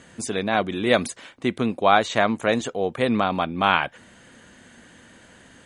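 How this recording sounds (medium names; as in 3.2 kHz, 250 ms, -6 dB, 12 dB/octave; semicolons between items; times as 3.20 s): noise floor -51 dBFS; spectral tilt -3.0 dB/octave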